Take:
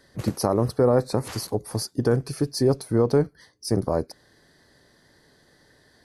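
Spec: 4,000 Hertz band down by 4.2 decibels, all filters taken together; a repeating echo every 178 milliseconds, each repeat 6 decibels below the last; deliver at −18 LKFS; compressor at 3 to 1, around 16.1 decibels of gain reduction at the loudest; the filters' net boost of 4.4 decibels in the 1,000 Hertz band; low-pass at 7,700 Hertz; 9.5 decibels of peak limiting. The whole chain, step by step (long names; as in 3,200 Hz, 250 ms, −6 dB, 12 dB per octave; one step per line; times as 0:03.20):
low-pass filter 7,700 Hz
parametric band 1,000 Hz +6 dB
parametric band 4,000 Hz −5 dB
downward compressor 3 to 1, threshold −37 dBFS
brickwall limiter −29.5 dBFS
repeating echo 178 ms, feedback 50%, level −6 dB
level +22.5 dB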